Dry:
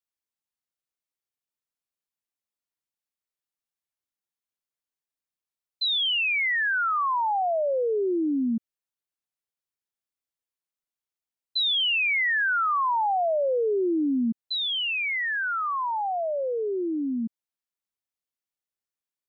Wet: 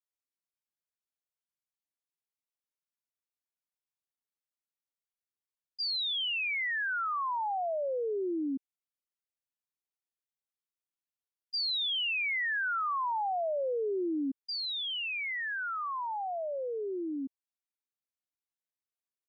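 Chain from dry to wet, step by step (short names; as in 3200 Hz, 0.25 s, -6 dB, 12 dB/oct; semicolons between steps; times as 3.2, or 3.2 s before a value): pitch shift +3 st; gain -7.5 dB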